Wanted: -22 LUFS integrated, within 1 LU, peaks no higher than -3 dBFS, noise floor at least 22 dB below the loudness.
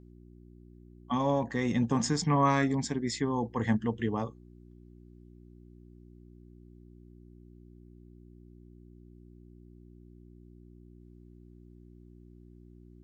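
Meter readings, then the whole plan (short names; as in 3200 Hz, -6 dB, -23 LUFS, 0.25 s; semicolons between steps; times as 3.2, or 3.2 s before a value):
hum 60 Hz; harmonics up to 360 Hz; hum level -52 dBFS; loudness -29.5 LUFS; peak -13.0 dBFS; loudness target -22.0 LUFS
-> de-hum 60 Hz, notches 6; gain +7.5 dB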